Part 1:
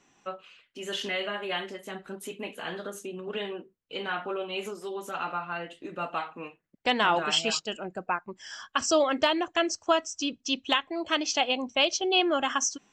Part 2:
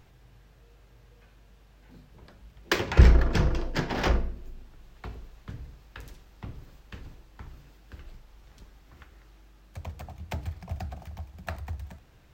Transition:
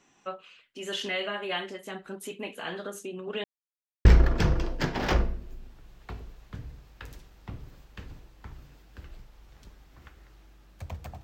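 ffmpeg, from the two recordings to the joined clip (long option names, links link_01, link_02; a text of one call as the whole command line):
ffmpeg -i cue0.wav -i cue1.wav -filter_complex "[0:a]apad=whole_dur=11.23,atrim=end=11.23,asplit=2[link_01][link_02];[link_01]atrim=end=3.44,asetpts=PTS-STARTPTS,afade=type=out:start_time=3.436:duration=0.004:curve=hsin[link_03];[link_02]atrim=start=3.44:end=4.05,asetpts=PTS-STARTPTS,volume=0[link_04];[1:a]atrim=start=3:end=10.18,asetpts=PTS-STARTPTS,afade=type=in:duration=0.004:curve=hsin[link_05];[link_03][link_04][link_05]concat=n=3:v=0:a=1" out.wav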